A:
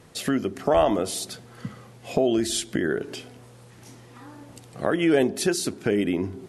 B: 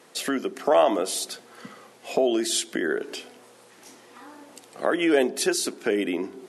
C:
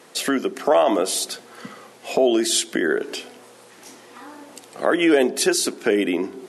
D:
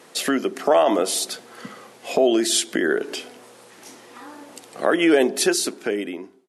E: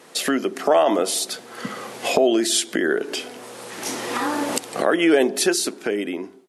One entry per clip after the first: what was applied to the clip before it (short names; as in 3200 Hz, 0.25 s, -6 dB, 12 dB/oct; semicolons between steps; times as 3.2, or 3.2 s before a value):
Bessel high-pass 350 Hz, order 4; gain +2 dB
maximiser +11 dB; gain -6 dB
ending faded out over 1.03 s
recorder AGC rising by 16 dB/s